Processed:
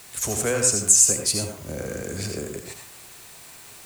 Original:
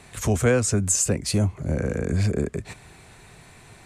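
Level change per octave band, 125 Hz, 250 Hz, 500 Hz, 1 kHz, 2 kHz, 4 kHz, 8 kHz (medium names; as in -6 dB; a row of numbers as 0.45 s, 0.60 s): -10.5 dB, -7.5 dB, -3.5 dB, -2.0 dB, -1.5 dB, +5.0 dB, +8.0 dB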